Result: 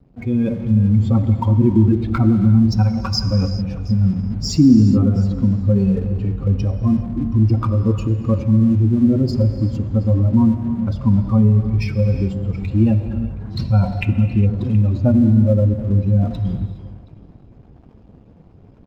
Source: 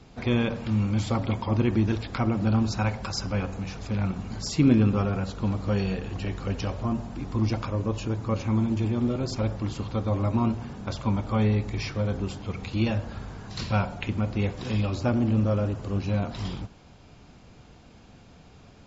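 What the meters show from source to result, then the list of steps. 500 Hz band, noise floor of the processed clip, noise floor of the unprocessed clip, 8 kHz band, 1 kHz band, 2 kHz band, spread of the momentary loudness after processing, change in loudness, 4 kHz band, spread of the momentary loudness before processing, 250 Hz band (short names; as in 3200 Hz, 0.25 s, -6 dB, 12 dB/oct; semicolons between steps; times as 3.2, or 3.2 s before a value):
+5.0 dB, -46 dBFS, -51 dBFS, n/a, +1.0 dB, -1.5 dB, 8 LU, +10.0 dB, +5.0 dB, 8 LU, +10.5 dB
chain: spectral contrast raised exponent 2.1; on a send: echo 0.723 s -22.5 dB; on the sum: crossover distortion -54 dBFS; AGC gain up to 8 dB; bell 280 Hz +2 dB; non-linear reverb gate 0.44 s flat, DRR 9 dB; in parallel at -2.5 dB: limiter -10 dBFS, peak gain reduction 8 dB; on the sum: gain -2 dB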